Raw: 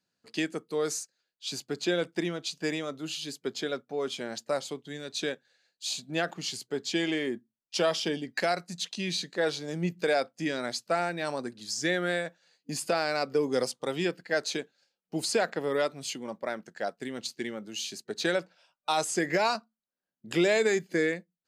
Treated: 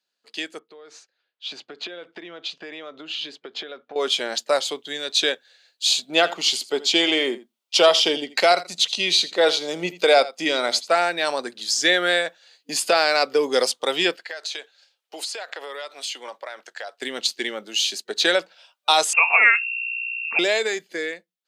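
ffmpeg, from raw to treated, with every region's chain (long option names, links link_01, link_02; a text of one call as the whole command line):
ffmpeg -i in.wav -filter_complex "[0:a]asettb=1/sr,asplit=3[link_01][link_02][link_03];[link_01]atrim=end=0.594[link_04];[link_02]atrim=start=0.59:end=3.96,asetpts=PTS-STARTPTS,afade=type=in:duration=0.004:curve=qsin,afade=type=out:start_time=3.366:duration=0.004:curve=qsin,lowpass=2500,acompressor=threshold=-40dB:ratio=16:attack=3.2:release=140:knee=1:detection=peak[link_05];[link_03]atrim=start=3.956[link_06];[link_04][link_05]acrossfade=duration=0.004:curve1=hsin:curve2=qsin[link_07];[link_07][link_06]acrossfade=duration=0.004:curve1=qsin:curve2=hsin,asettb=1/sr,asplit=3[link_08][link_09][link_10];[link_08]atrim=end=6.084[link_11];[link_09]atrim=start=6.08:end=10.9,asetpts=PTS-STARTPTS,afade=type=in:duration=0.004:curve=qsin,afade=type=out:start_time=4.816:duration=0.004:curve=qsin,equalizer=frequency=680:width=0.35:gain=3,bandreject=frequency=1700:width=5.7,aecho=1:1:82:0.141,atrim=end_sample=212562[link_12];[link_10]atrim=start=10.896[link_13];[link_11][link_12]acrossfade=duration=0.004:curve1=hsin:curve2=qsin[link_14];[link_14][link_13]acrossfade=duration=0.004:curve1=qsin:curve2=hsin,asettb=1/sr,asplit=3[link_15][link_16][link_17];[link_15]atrim=end=14.164[link_18];[link_16]atrim=start=14.16:end=17.02,asetpts=PTS-STARTPTS,afade=type=in:duration=0.004:curve=qsin,afade=type=out:start_time=2.856:duration=0.004:curve=qsin,highpass=580,highshelf=frequency=12000:gain=-6.5,acompressor=threshold=-39dB:ratio=20:attack=3.2:release=140:knee=1:detection=peak[link_19];[link_17]atrim=start=17.016[link_20];[link_18][link_19]acrossfade=duration=0.004:curve1=hsin:curve2=qsin[link_21];[link_21][link_20]acrossfade=duration=0.004:curve1=qsin:curve2=hsin,asettb=1/sr,asplit=3[link_22][link_23][link_24];[link_22]atrim=end=19.134[link_25];[link_23]atrim=start=19.13:end=20.39,asetpts=PTS-STARTPTS,afade=type=in:duration=0.004:curve=qsin,afade=type=out:start_time=1.256:duration=0.004:curve=qsin,aecho=1:1:4.3:0.34,atrim=end_sample=55566,aeval=exprs='val(0)+0.0112*(sin(2*PI*60*n/s)+sin(2*PI*2*60*n/s)/2+sin(2*PI*3*60*n/s)/3+sin(2*PI*4*60*n/s)/4+sin(2*PI*5*60*n/s)/5)':channel_layout=same,lowpass=frequency=2400:width_type=q:width=0.5098,lowpass=frequency=2400:width_type=q:width=0.6013,lowpass=frequency=2400:width_type=q:width=0.9,lowpass=frequency=2400:width_type=q:width=2.563,afreqshift=-2800[link_26];[link_24]atrim=start=20.386[link_27];[link_25][link_26]acrossfade=duration=0.004:curve1=hsin:curve2=qsin[link_28];[link_28][link_27]acrossfade=duration=0.004:curve1=qsin:curve2=hsin,highpass=450,equalizer=frequency=3400:width_type=o:width=0.75:gain=7,dynaudnorm=framelen=120:gausssize=21:maxgain=10.5dB" out.wav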